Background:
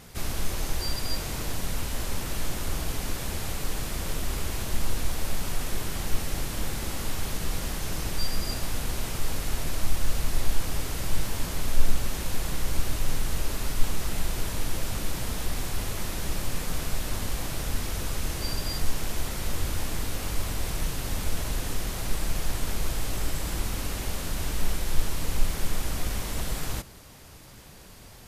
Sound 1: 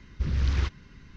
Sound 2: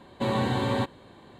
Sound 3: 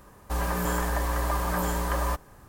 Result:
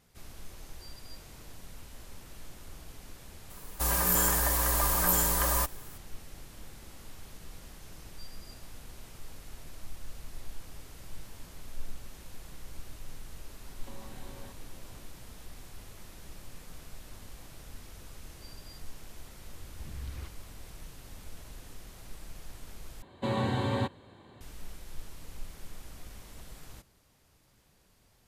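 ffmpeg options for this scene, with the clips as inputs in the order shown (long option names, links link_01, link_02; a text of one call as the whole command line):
ffmpeg -i bed.wav -i cue0.wav -i cue1.wav -i cue2.wav -filter_complex "[2:a]asplit=2[link_01][link_02];[0:a]volume=-17.5dB[link_03];[3:a]crystalizer=i=4:c=0[link_04];[link_01]acompressor=threshold=-40dB:ratio=6:attack=3.2:release=140:knee=1:detection=peak[link_05];[link_02]equalizer=frequency=94:width_type=o:width=0.47:gain=7[link_06];[link_03]asplit=2[link_07][link_08];[link_07]atrim=end=23.024[link_09];[link_06]atrim=end=1.39,asetpts=PTS-STARTPTS,volume=-4.5dB[link_10];[link_08]atrim=start=24.406[link_11];[link_04]atrim=end=2.48,asetpts=PTS-STARTPTS,volume=-4dB,afade=type=in:duration=0.004:curve=hsin,afade=type=out:start_time=2.476:duration=0.004:curve=hsin,adelay=3500[link_12];[link_05]atrim=end=1.39,asetpts=PTS-STARTPTS,volume=-8dB,afade=type=in:duration=0.004:curve=hsin,afade=type=out:start_time=1.386:duration=0.004:curve=hsin,adelay=13670[link_13];[1:a]atrim=end=1.16,asetpts=PTS-STARTPTS,volume=-16.5dB,afade=type=in:duration=0.004:curve=hsin,afade=type=out:start_time=1.156:duration=0.004:curve=hsin,adelay=19600[link_14];[link_09][link_10]acrossfade=duration=0.004:curve1=hsin:curve2=hsin[link_15];[link_15][link_11]acrossfade=duration=0.004:curve1=hsin:curve2=hsin[link_16];[link_16][link_12][link_13][link_14]amix=inputs=4:normalize=0" out.wav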